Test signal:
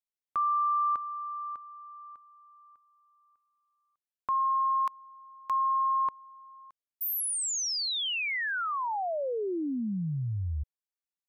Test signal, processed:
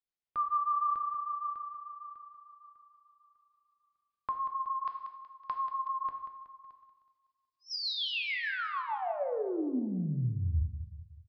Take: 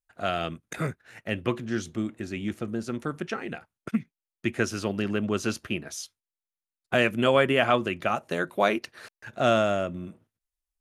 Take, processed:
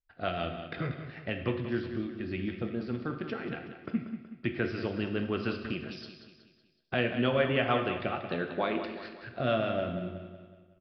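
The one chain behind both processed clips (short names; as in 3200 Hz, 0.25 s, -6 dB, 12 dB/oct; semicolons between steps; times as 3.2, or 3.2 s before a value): low shelf 91 Hz +7 dB; in parallel at +2 dB: compressor, threshold -32 dBFS; on the sum: rotary speaker horn 6.7 Hz; on a send: feedback echo 0.186 s, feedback 48%, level -10.5 dB; on the sum: non-linear reverb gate 0.3 s falling, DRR 5.5 dB; downsampling 11025 Hz; gain -7.5 dB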